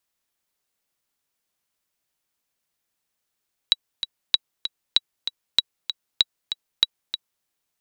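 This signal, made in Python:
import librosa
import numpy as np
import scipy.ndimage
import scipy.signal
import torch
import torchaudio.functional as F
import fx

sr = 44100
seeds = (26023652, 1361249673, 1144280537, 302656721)

y = fx.click_track(sr, bpm=193, beats=2, bars=6, hz=3890.0, accent_db=10.0, level_db=-2.5)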